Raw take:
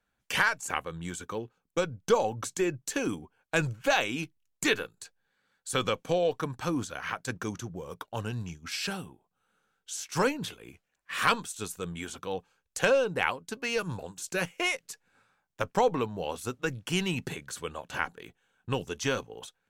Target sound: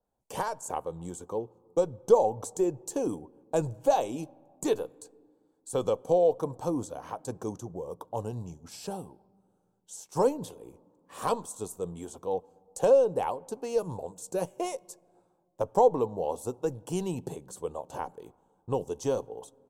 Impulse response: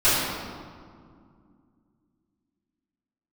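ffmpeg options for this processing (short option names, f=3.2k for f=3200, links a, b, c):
-filter_complex "[0:a]firequalizer=gain_entry='entry(220,0);entry(460,7);entry(910,5);entry(1400,-15);entry(2100,-21);entry(3300,-14);entry(8000,-2);entry(14000,-5)':delay=0.05:min_phase=1,asplit=2[a][b];[1:a]atrim=start_sample=2205,highshelf=f=3.7k:g=-10,adelay=27[c];[b][c]afir=irnorm=-1:irlink=0,volume=-43.5dB[d];[a][d]amix=inputs=2:normalize=0,adynamicequalizer=threshold=0.00794:dfrequency=2200:dqfactor=0.7:tfrequency=2200:tqfactor=0.7:attack=5:release=100:ratio=0.375:range=2:mode=boostabove:tftype=highshelf,volume=-2.5dB"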